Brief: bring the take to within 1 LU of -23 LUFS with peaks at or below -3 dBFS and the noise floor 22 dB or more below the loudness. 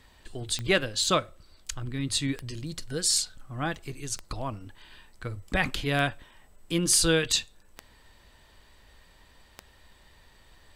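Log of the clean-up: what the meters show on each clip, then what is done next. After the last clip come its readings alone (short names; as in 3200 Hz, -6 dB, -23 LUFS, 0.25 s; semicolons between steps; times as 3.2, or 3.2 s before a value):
clicks 6; loudness -27.5 LUFS; peak -9.0 dBFS; loudness target -23.0 LUFS
-> de-click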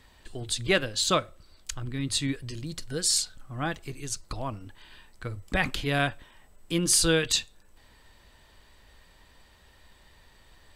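clicks 0; loudness -27.5 LUFS; peak -9.0 dBFS; loudness target -23.0 LUFS
-> gain +4.5 dB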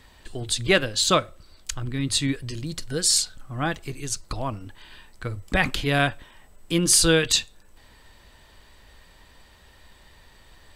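loudness -23.0 LUFS; peak -4.5 dBFS; noise floor -54 dBFS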